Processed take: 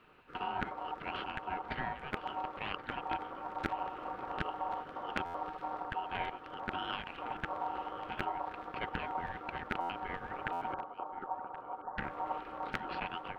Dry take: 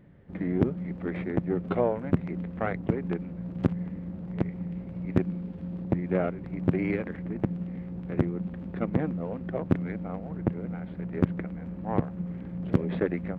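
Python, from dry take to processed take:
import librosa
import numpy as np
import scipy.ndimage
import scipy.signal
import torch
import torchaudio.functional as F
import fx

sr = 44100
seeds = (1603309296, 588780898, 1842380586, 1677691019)

y = fx.spec_gate(x, sr, threshold_db=-15, keep='weak')
y = scipy.signal.sosfilt(scipy.signal.butter(4, 53.0, 'highpass', fs=sr, output='sos'), y)
y = fx.peak_eq(y, sr, hz=83.0, db=13.0, octaves=1.0)
y = fx.rider(y, sr, range_db=5, speed_s=0.5)
y = fx.gaussian_blur(y, sr, sigma=17.0, at=(10.74, 11.98))
y = y * np.sin(2.0 * np.pi * 840.0 * np.arange(len(y)) / sr)
y = y + 10.0 ** (-17.5 / 20.0) * np.pad(y, (int(1077 * sr / 1000.0), 0))[:len(y)]
y = fx.buffer_glitch(y, sr, at_s=(5.25, 9.8, 10.52), block=512, repeats=7)
y = F.gain(torch.from_numpy(y), 5.0).numpy()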